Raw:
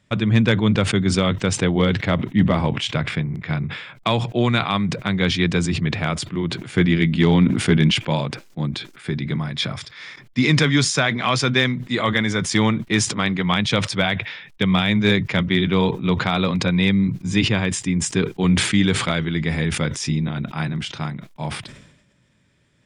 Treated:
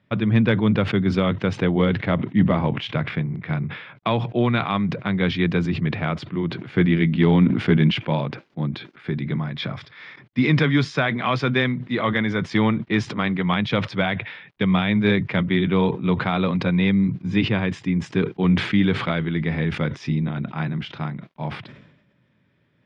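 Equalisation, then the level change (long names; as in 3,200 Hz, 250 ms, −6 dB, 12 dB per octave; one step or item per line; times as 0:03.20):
high-pass filter 100 Hz
high-frequency loss of the air 300 metres
0.0 dB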